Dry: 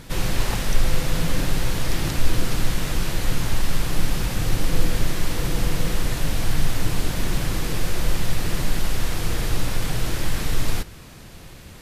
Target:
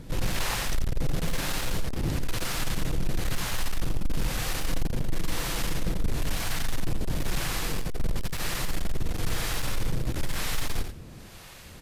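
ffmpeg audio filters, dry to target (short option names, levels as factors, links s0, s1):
-filter_complex "[0:a]acrossover=split=600[s0][s1];[s0]aeval=exprs='val(0)*(1-0.7/2+0.7/2*cos(2*PI*1*n/s))':c=same[s2];[s1]aeval=exprs='val(0)*(1-0.7/2-0.7/2*cos(2*PI*1*n/s))':c=same[s3];[s2][s3]amix=inputs=2:normalize=0,asoftclip=type=hard:threshold=0.0794,aecho=1:1:87:0.398"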